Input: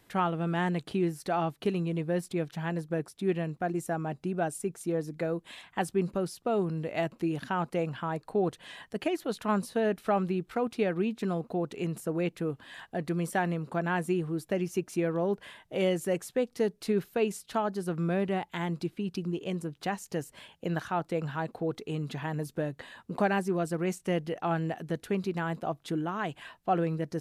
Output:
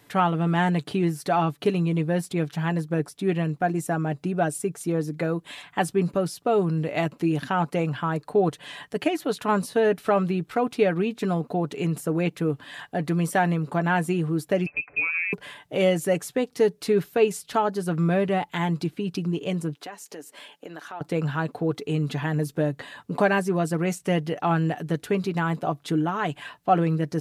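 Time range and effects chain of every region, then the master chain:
14.66–15.33 HPF 180 Hz 24 dB/oct + compressor 3:1, threshold -31 dBFS + inverted band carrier 2800 Hz
19.75–21.01 HPF 250 Hz 24 dB/oct + compressor 2.5:1, threshold -46 dBFS
whole clip: HPF 61 Hz; comb 6.9 ms, depth 43%; gain +6 dB

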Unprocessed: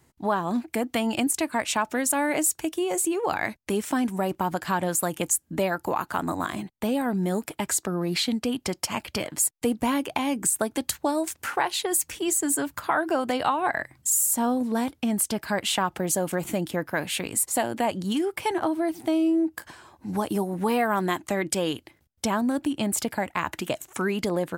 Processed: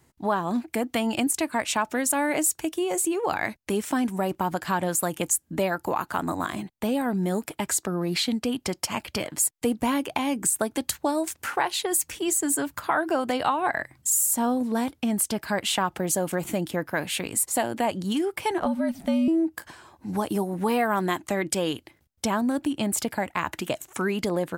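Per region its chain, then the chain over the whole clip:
18.6–19.28 high shelf 6900 Hz -5 dB + frequency shift -75 Hz
whole clip: dry

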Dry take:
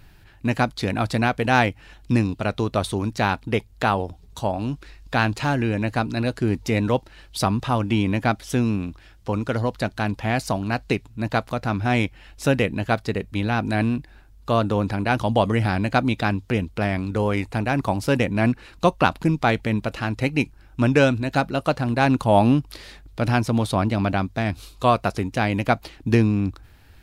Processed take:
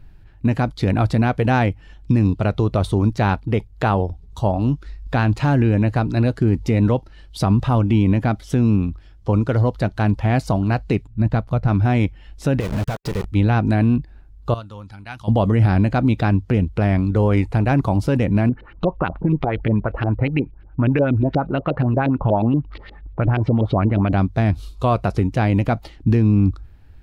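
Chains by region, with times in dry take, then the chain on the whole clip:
11.07–11.68 tone controls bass +6 dB, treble -3 dB + upward expander, over -28 dBFS
12.6–13.25 compressor 5:1, threshold -32 dBFS + companded quantiser 2-bit
14.54–15.28 passive tone stack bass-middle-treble 5-5-5 + mismatched tape noise reduction decoder only
18.49–24.13 compressor, threshold -21 dBFS + LFO low-pass saw up 8.4 Hz 360–3700 Hz
whole clip: spectral noise reduction 7 dB; tilt -2.5 dB/oct; limiter -10 dBFS; gain +2 dB

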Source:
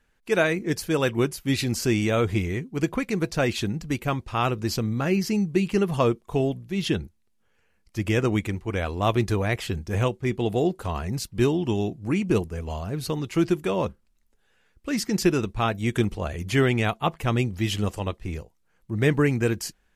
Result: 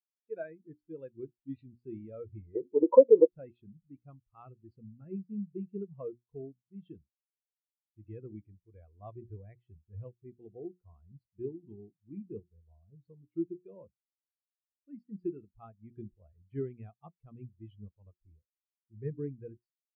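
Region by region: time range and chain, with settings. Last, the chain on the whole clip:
2.55–3.27 band shelf 590 Hz +9.5 dB 2.6 oct + compressor, threshold -17 dBFS + small resonant body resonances 550/890 Hz, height 18 dB, ringing for 25 ms
whole clip: LPF 4300 Hz 24 dB/oct; notches 60/120/180/240/300/360 Hz; spectral expander 2.5:1; gain -4 dB

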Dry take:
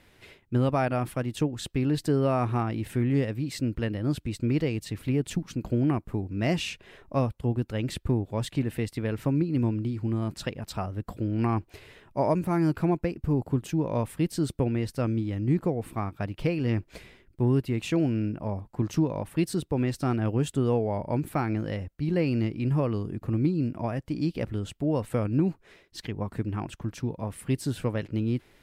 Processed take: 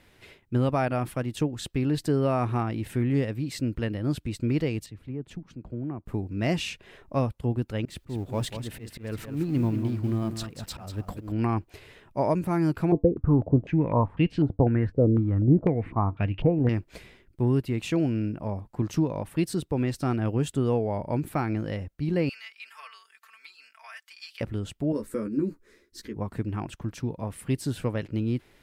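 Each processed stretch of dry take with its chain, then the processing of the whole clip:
4.86–6.06 LPF 1200 Hz 6 dB/oct + compressor 1.5:1, threshold -45 dBFS + three-band expander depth 70%
7.85–11.32 G.711 law mismatch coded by mu + auto swell 0.226 s + echo 0.193 s -9 dB
12.92–16.69 low shelf 370 Hz +9.5 dB + resonator 96 Hz, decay 0.16 s, harmonics odd, mix 40% + stepped low-pass 4 Hz 470–2700 Hz
22.29–24.41 HPF 1400 Hz 24 dB/oct + comb 4.5 ms, depth 93%
24.92–26.16 bell 2900 Hz -13.5 dB 0.84 oct + fixed phaser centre 310 Hz, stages 4 + doubler 14 ms -4.5 dB
whole clip: dry

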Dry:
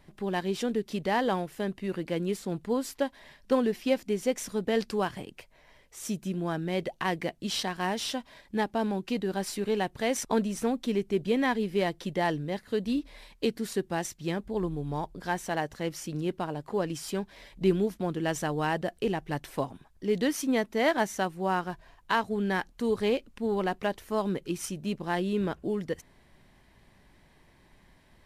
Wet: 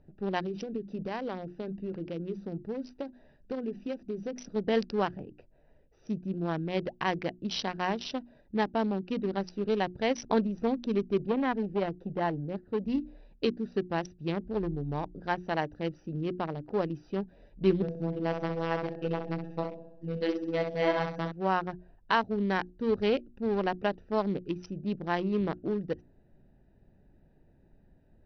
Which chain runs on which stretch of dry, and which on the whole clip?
0.46–4.56 bell 7500 Hz +5 dB 0.8 oct + notches 50/100/150/200/250/300/350 Hz + compressor, threshold -29 dBFS
11.26–12.86 high shelf 2400 Hz -11 dB + core saturation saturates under 560 Hz
17.82–21.32 de-esser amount 95% + robotiser 165 Hz + flutter echo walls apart 11.1 m, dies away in 0.87 s
whole clip: Wiener smoothing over 41 samples; Chebyshev low-pass 5900 Hz, order 10; notches 60/120/180/240/300/360 Hz; gain +1.5 dB

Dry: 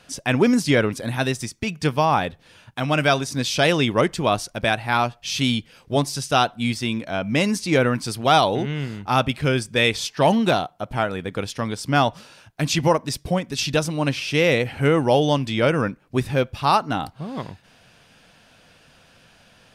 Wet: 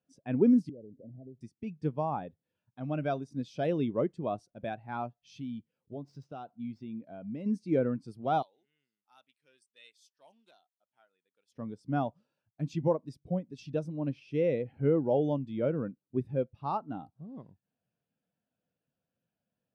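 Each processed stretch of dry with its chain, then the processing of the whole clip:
0.69–1.41 steep low-pass 700 Hz 96 dB/oct + compressor 8:1, threshold -28 dBFS
5.38–7.46 median filter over 5 samples + compressor 2.5:1, threshold -24 dBFS
8.42–11.52 differentiator + Doppler distortion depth 0.11 ms
whole clip: HPF 250 Hz 6 dB/oct; tilt shelf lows +7 dB, about 650 Hz; spectral expander 1.5:1; gain -8.5 dB

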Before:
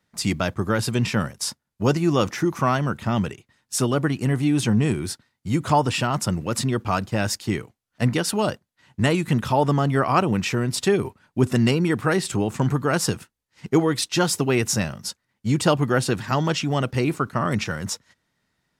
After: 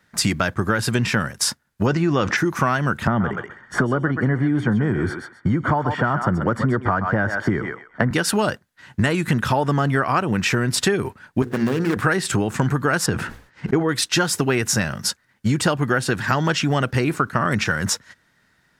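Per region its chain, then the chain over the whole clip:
1.86–2.37 air absorption 94 m + fast leveller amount 50%
3.07–8.11 polynomial smoothing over 41 samples + thinning echo 0.129 s, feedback 16%, high-pass 760 Hz, level -7 dB + three-band squash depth 70%
11.42–11.97 median filter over 41 samples + HPF 270 Hz 6 dB/oct + notches 60/120/180/240/300/360/420/480 Hz
13.06–13.89 LPF 1600 Hz 6 dB/oct + sustainer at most 120 dB/s
whole clip: bell 1600 Hz +8.5 dB 0.57 oct; compressor, threshold -25 dBFS; gain +8.5 dB

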